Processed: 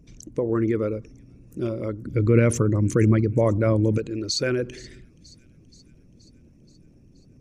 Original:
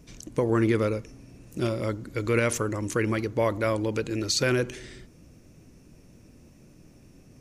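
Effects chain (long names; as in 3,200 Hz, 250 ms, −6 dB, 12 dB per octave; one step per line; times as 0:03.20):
spectral envelope exaggerated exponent 1.5
0:02.05–0:03.98: parametric band 130 Hz +13 dB 2.4 octaves
delay with a high-pass on its return 476 ms, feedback 63%, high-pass 4,000 Hz, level −18.5 dB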